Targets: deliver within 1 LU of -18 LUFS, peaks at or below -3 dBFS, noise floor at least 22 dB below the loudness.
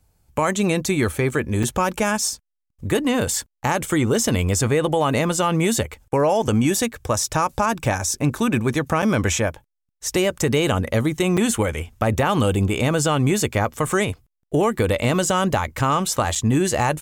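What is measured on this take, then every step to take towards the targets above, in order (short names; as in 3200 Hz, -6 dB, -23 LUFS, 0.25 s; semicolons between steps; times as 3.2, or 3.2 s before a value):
dropouts 4; longest dropout 5.6 ms; loudness -21.0 LUFS; peak -6.5 dBFS; loudness target -18.0 LUFS
-> interpolate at 1.63/9.02/11.37/16.35, 5.6 ms; gain +3 dB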